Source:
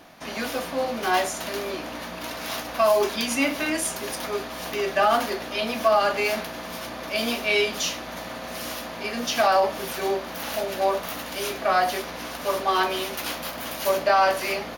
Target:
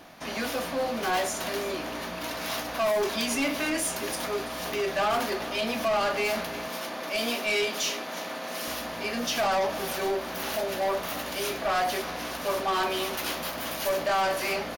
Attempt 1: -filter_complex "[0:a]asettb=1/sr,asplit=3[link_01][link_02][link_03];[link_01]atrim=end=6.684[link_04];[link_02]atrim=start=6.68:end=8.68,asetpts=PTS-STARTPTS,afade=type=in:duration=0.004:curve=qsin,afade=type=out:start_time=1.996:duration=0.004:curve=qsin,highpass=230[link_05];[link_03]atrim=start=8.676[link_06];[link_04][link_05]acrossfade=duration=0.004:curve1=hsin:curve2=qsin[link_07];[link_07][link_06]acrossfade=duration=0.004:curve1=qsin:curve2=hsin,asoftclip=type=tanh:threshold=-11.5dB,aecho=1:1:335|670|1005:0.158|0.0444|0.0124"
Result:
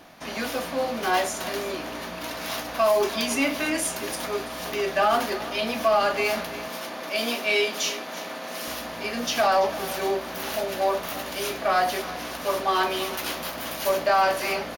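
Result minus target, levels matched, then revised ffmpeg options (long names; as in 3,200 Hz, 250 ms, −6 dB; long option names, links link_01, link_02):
soft clipping: distortion −12 dB
-filter_complex "[0:a]asettb=1/sr,asplit=3[link_01][link_02][link_03];[link_01]atrim=end=6.684[link_04];[link_02]atrim=start=6.68:end=8.68,asetpts=PTS-STARTPTS,afade=type=in:duration=0.004:curve=qsin,afade=type=out:start_time=1.996:duration=0.004:curve=qsin,highpass=230[link_05];[link_03]atrim=start=8.676[link_06];[link_04][link_05]acrossfade=duration=0.004:curve1=hsin:curve2=qsin[link_07];[link_07][link_06]acrossfade=duration=0.004:curve1=qsin:curve2=hsin,asoftclip=type=tanh:threshold=-22dB,aecho=1:1:335|670|1005:0.158|0.0444|0.0124"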